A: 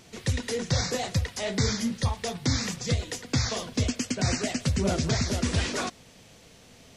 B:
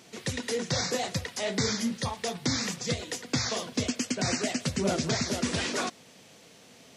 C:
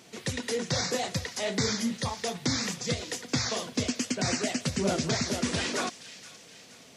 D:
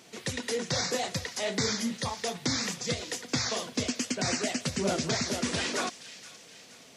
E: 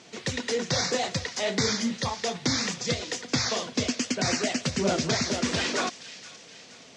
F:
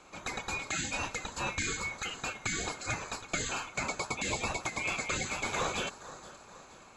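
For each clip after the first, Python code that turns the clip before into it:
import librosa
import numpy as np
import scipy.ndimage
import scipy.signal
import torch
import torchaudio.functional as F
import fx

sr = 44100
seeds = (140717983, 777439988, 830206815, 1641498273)

y1 = scipy.signal.sosfilt(scipy.signal.butter(2, 170.0, 'highpass', fs=sr, output='sos'), x)
y2 = fx.echo_wet_highpass(y1, sr, ms=473, feedback_pct=49, hz=2000.0, wet_db=-14.0)
y3 = fx.low_shelf(y2, sr, hz=210.0, db=-4.5)
y4 = scipy.signal.sosfilt(scipy.signal.butter(4, 7200.0, 'lowpass', fs=sr, output='sos'), y3)
y4 = y4 * 10.0 ** (3.5 / 20.0)
y5 = fx.band_swap(y4, sr, width_hz=2000)
y5 = fx.high_shelf_res(y5, sr, hz=1600.0, db=-8.5, q=1.5)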